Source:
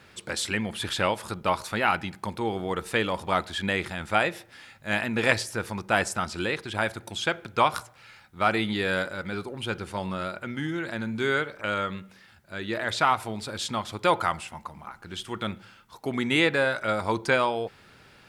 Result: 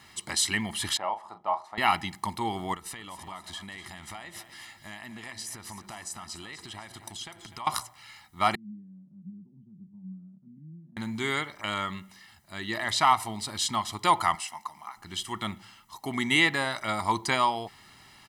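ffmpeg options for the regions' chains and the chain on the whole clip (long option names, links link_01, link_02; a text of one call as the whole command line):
ffmpeg -i in.wav -filter_complex "[0:a]asettb=1/sr,asplit=3[link_01][link_02][link_03];[link_01]atrim=end=0.974[link_04];[link_02]atrim=start=0.97:end=1.78,asetpts=PTS-STARTPTS,afade=type=in:duration=0.004:curve=qsin,afade=type=out:start_time=0.806:duration=0.004:curve=qsin,bandpass=frequency=710:width_type=q:width=2.4,asplit=2[link_05][link_06];[link_06]adelay=38,volume=-10.5dB[link_07];[link_05][link_07]amix=inputs=2:normalize=0,atrim=end_sample=35721[link_08];[link_03]atrim=start=1.776[link_09];[link_04][link_08]acrossfade=duration=0.004:curve1=hsin:curve2=qsin[link_10];[link_10][link_09]acrossfade=duration=0.004:curve1=qsin:curve2=hsin,asettb=1/sr,asplit=3[link_11][link_12][link_13];[link_11]atrim=end=2.744[link_14];[link_12]atrim=start=2.74:end=7.67,asetpts=PTS-STARTPTS,afade=type=in:duration=0.004:curve=qsin,afade=type=out:start_time=4.926:duration=0.004:curve=qsin,acompressor=threshold=-39dB:ratio=5:attack=3.2:release=140:knee=1:detection=peak,aecho=1:1:250|500|750|1000:0.251|0.105|0.0443|0.0186,atrim=end_sample=217413[link_15];[link_13]atrim=start=7.666[link_16];[link_14][link_15]acrossfade=duration=0.004:curve1=hsin:curve2=qsin[link_17];[link_17][link_16]acrossfade=duration=0.004:curve1=qsin:curve2=hsin,asettb=1/sr,asplit=3[link_18][link_19][link_20];[link_18]atrim=end=8.554[link_21];[link_19]atrim=start=8.55:end=10.97,asetpts=PTS-STARTPTS,afade=type=in:duration=0.004:curve=qsin,afade=type=out:start_time=2.416:duration=0.004:curve=qsin,acompressor=threshold=-31dB:ratio=10:attack=3.2:release=140:knee=1:detection=peak,asuperpass=centerf=180:order=4:qfactor=2.9[link_22];[link_20]atrim=start=10.966[link_23];[link_21][link_22]acrossfade=duration=0.004:curve1=hsin:curve2=qsin[link_24];[link_24][link_23]acrossfade=duration=0.004:curve1=qsin:curve2=hsin,asettb=1/sr,asplit=3[link_25][link_26][link_27];[link_25]atrim=end=14.354[link_28];[link_26]atrim=start=14.35:end=14.97,asetpts=PTS-STARTPTS,afade=type=in:duration=0.004:curve=qsin,afade=type=out:start_time=0.616:duration=0.004:curve=qsin,highpass=frequency=650:poles=1,equalizer=frequency=5500:width=6:gain=5[link_29];[link_27]atrim=start=14.966[link_30];[link_28][link_29]acrossfade=duration=0.004:curve1=hsin:curve2=qsin[link_31];[link_31][link_30]acrossfade=duration=0.004:curve1=qsin:curve2=hsin,bass=frequency=250:gain=-6,treble=frequency=4000:gain=6,aecho=1:1:1:0.79,volume=-1.5dB" out.wav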